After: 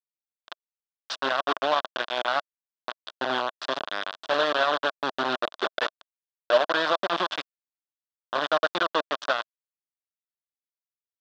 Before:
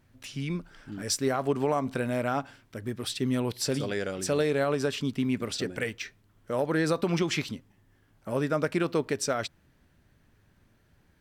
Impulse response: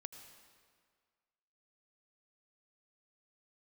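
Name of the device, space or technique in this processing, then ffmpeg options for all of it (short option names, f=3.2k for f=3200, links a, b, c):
hand-held game console: -filter_complex "[0:a]asplit=3[a][b][c];[a]afade=t=out:st=4.99:d=0.02[d];[b]equalizer=f=400:t=o:w=0.33:g=8,equalizer=f=630:t=o:w=0.33:g=11,equalizer=f=12.5k:t=o:w=0.33:g=-6,afade=t=in:st=4.99:d=0.02,afade=t=out:st=6.56:d=0.02[e];[c]afade=t=in:st=6.56:d=0.02[f];[d][e][f]amix=inputs=3:normalize=0,acrusher=bits=3:mix=0:aa=0.000001,highpass=420,equalizer=f=440:t=q:w=4:g=-5,equalizer=f=640:t=q:w=4:g=7,equalizer=f=1.1k:t=q:w=4:g=7,equalizer=f=1.5k:t=q:w=4:g=7,equalizer=f=2.2k:t=q:w=4:g=-9,equalizer=f=3.5k:t=q:w=4:g=7,lowpass=f=4.3k:w=0.5412,lowpass=f=4.3k:w=1.3066"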